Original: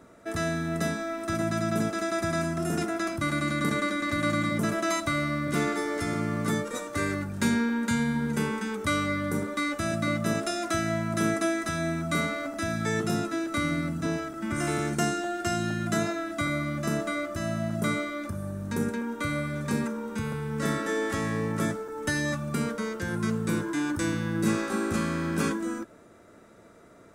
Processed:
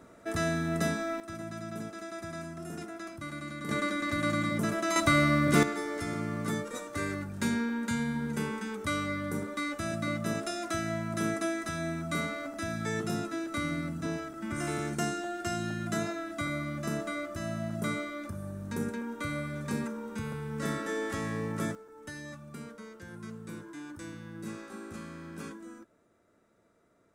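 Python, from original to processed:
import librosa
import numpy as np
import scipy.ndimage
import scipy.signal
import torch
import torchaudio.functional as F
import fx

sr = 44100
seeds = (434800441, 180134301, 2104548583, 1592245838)

y = fx.gain(x, sr, db=fx.steps((0.0, -1.0), (1.2, -12.0), (3.69, -3.0), (4.96, 4.0), (5.63, -5.0), (21.75, -15.0)))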